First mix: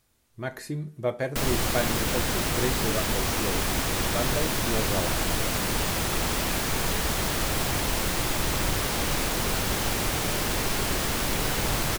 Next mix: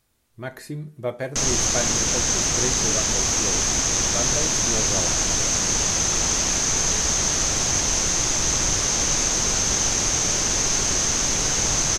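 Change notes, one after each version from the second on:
background: add synth low-pass 6300 Hz, resonance Q 12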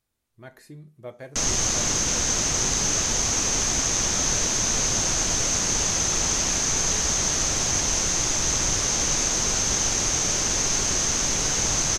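speech -10.5 dB; reverb: off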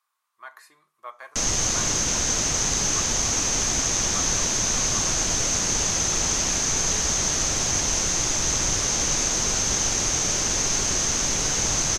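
speech: add resonant high-pass 1100 Hz, resonance Q 7.2

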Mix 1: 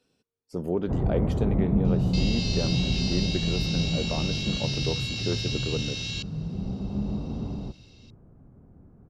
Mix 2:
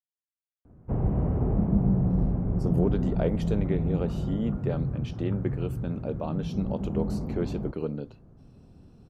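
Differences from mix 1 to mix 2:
speech: entry +2.10 s; second sound: muted

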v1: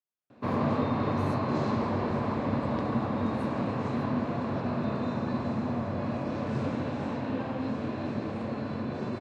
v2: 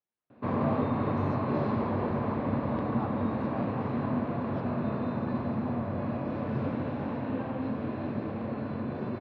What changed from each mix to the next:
speech +7.0 dB; master: add air absorption 300 m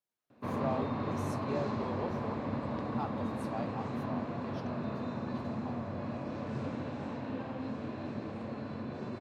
background -6.5 dB; master: remove air absorption 300 m

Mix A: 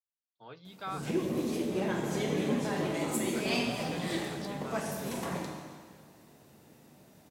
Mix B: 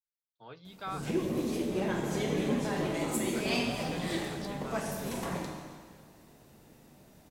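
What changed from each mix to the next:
master: remove HPF 90 Hz 12 dB/oct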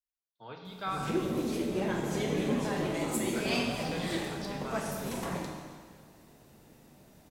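speech: send on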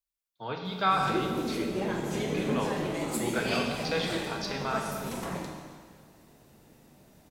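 speech +10.0 dB

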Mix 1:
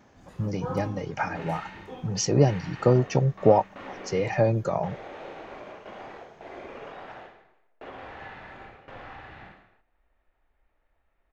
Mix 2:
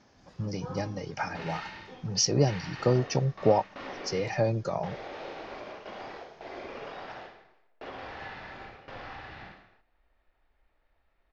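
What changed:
speech -4.5 dB; first sound -8.0 dB; master: add synth low-pass 5200 Hz, resonance Q 3.5

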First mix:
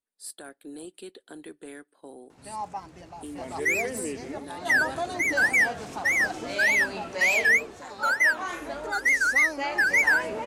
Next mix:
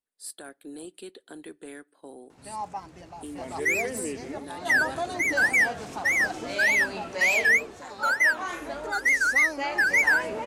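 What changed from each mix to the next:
speech: send +7.0 dB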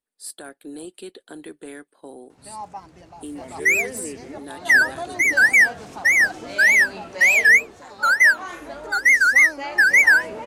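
speech +5.0 dB; second sound +7.5 dB; reverb: off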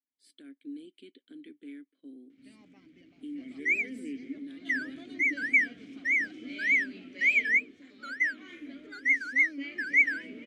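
first sound +4.0 dB; master: add vowel filter i

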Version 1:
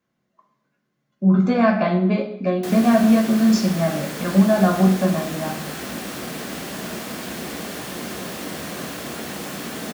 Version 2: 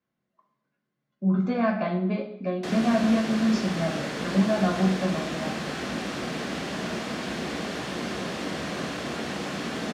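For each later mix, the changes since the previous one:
speech -7.5 dB; master: add LPF 5300 Hz 12 dB/oct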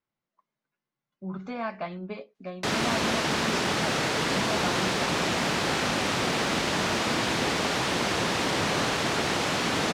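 background +9.5 dB; reverb: off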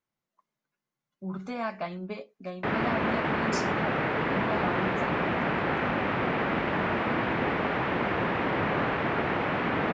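background: add LPF 2300 Hz 24 dB/oct; master: remove LPF 5300 Hz 12 dB/oct

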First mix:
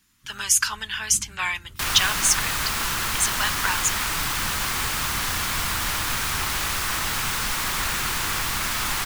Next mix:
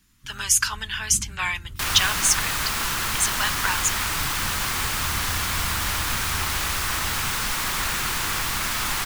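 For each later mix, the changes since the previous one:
first sound: add tilt -2 dB/oct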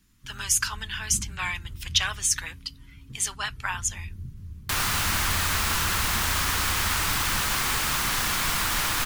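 speech -4.0 dB; second sound: entry +2.90 s

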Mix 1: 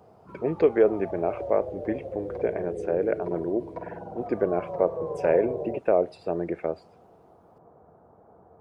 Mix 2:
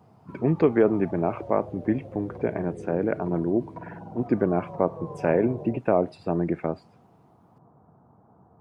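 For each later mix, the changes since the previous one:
background -6.5 dB; master: add graphic EQ 125/250/500/1000 Hz +12/+8/-6/+7 dB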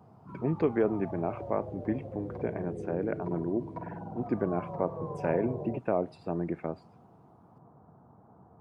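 speech -7.0 dB

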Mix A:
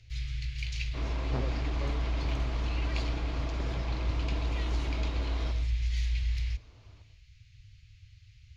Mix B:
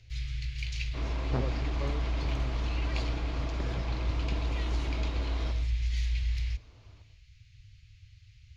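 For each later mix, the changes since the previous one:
speech +3.0 dB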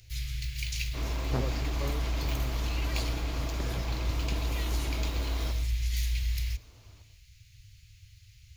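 master: remove air absorption 140 m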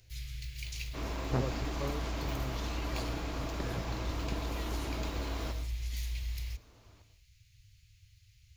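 first sound -7.0 dB

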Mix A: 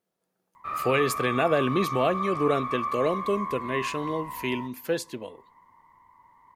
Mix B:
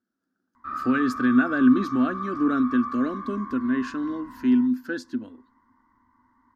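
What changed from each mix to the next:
master: add EQ curve 110 Hz 0 dB, 160 Hz -14 dB, 250 Hz +15 dB, 450 Hz -12 dB, 1000 Hz -10 dB, 1500 Hz +9 dB, 2200 Hz -15 dB, 5200 Hz -4 dB, 10000 Hz -19 dB, 15000 Hz -17 dB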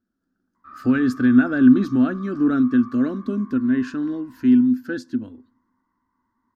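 speech: remove HPF 360 Hz 6 dB/oct; background -10.0 dB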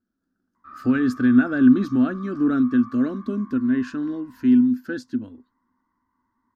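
speech: send off

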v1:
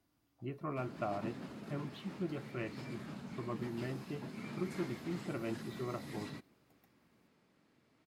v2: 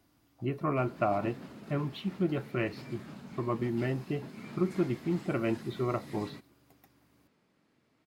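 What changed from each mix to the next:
speech +9.5 dB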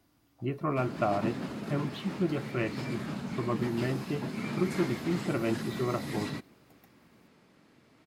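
background +10.0 dB

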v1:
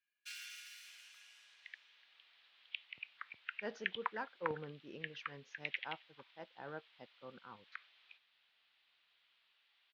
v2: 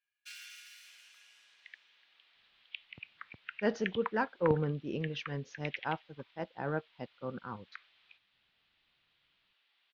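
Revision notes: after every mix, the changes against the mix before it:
speech +9.5 dB; master: add low shelf 280 Hz +11.5 dB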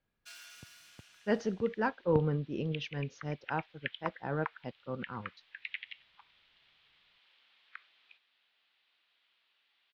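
speech: entry -2.35 s; first sound: remove resonant high-pass 2100 Hz, resonance Q 1.8; master: add low shelf 140 Hz +5 dB

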